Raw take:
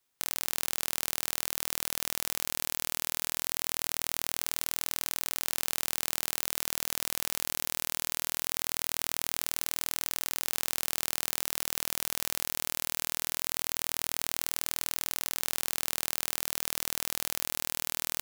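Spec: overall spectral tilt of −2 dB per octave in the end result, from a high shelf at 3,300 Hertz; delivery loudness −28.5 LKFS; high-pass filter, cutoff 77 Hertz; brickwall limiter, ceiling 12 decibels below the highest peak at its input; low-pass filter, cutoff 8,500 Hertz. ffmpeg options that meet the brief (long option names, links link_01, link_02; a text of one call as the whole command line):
ffmpeg -i in.wav -af "highpass=77,lowpass=8500,highshelf=frequency=3300:gain=-4,volume=21.5dB,alimiter=limit=-3.5dB:level=0:latency=1" out.wav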